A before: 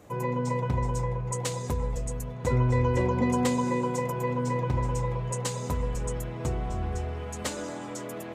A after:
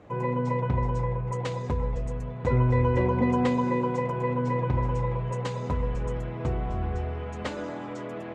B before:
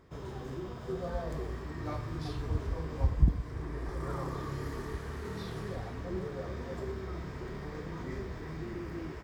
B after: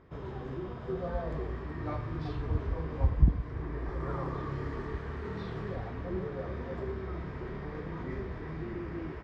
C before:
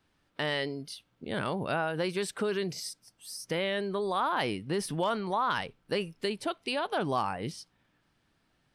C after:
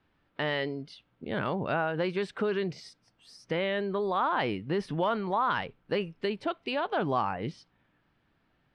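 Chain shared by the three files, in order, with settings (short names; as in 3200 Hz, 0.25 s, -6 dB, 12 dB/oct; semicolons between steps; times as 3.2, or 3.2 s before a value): LPF 2900 Hz 12 dB/oct; gain +1.5 dB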